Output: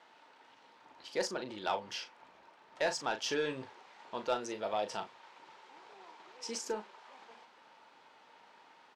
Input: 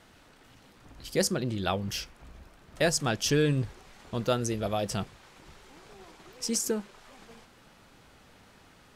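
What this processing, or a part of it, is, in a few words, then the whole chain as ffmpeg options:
intercom: -filter_complex "[0:a]highpass=440,lowpass=4400,equalizer=f=910:t=o:w=0.2:g=12,asoftclip=type=tanh:threshold=0.112,asplit=2[s0][s1];[s1]adelay=38,volume=0.355[s2];[s0][s2]amix=inputs=2:normalize=0,volume=0.668"

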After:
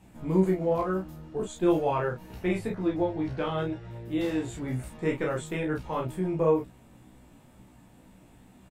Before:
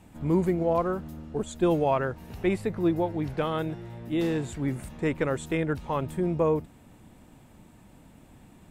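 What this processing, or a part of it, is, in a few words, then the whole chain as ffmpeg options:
double-tracked vocal: -filter_complex "[0:a]asettb=1/sr,asplit=3[s0][s1][s2];[s0]atrim=end=2.754[s3];[s1]atrim=start=2.75:end=3.91,asetpts=PTS-STARTPTS,afade=t=in:d=0.004:c=qsin,afade=t=out:st=1.156:d=0.004:c=qsin,lowpass=6800[s4];[s2]atrim=start=3.906[s5];[s3][s4]acrossfade=d=0.004:c1=hsin:c2=qsin[s6];[s6][s5]acrossfade=d=0.004:c1=qsin:c2=hsin,asplit=2[s7][s8];[s8]adelay=32,volume=0.708[s9];[s7][s9]amix=inputs=2:normalize=0,flanger=delay=15.5:depth=2.1:speed=2.1"

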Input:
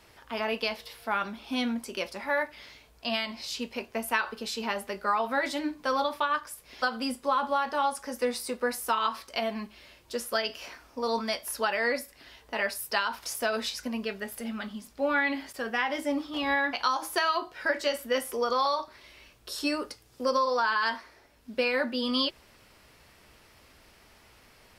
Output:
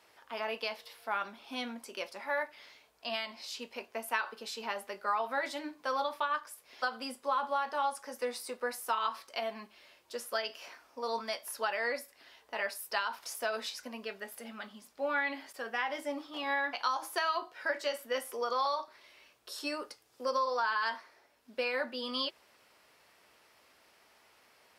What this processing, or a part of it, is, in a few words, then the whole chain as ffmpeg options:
filter by subtraction: -filter_complex "[0:a]asplit=2[s0][s1];[s1]lowpass=700,volume=-1[s2];[s0][s2]amix=inputs=2:normalize=0,volume=0.473"

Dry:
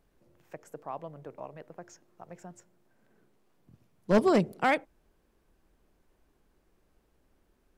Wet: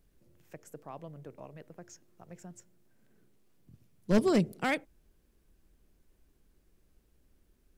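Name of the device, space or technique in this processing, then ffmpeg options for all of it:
smiley-face EQ: -af "lowshelf=f=160:g=5.5,equalizer=f=880:t=o:w=1.6:g=-7,highshelf=f=5500:g=6,volume=0.841"

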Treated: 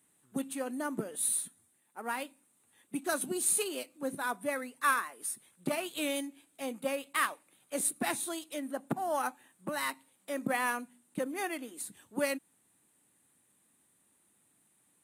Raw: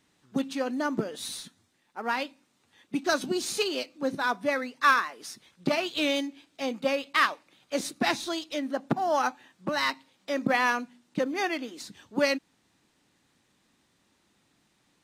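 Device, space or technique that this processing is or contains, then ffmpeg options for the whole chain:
budget condenser microphone: -af "highpass=85,highshelf=f=7200:t=q:w=3:g=12,volume=0.473"

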